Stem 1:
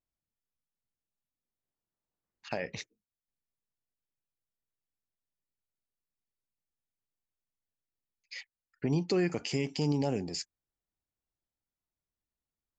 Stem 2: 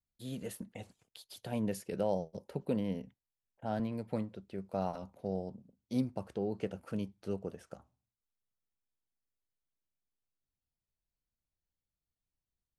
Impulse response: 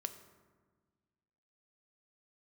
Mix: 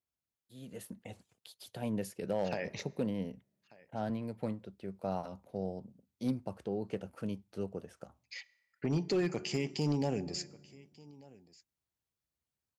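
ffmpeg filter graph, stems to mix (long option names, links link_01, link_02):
-filter_complex "[0:a]volume=-6dB,asplit=3[link_01][link_02][link_03];[link_02]volume=-3dB[link_04];[link_03]volume=-19dB[link_05];[1:a]dynaudnorm=framelen=180:gausssize=5:maxgain=10.5dB,adelay=300,volume=-11.5dB[link_06];[2:a]atrim=start_sample=2205[link_07];[link_04][link_07]afir=irnorm=-1:irlink=0[link_08];[link_05]aecho=0:1:1189:1[link_09];[link_01][link_06][link_08][link_09]amix=inputs=4:normalize=0,highpass=frequency=54:width=0.5412,highpass=frequency=54:width=1.3066,asoftclip=type=hard:threshold=-24.5dB"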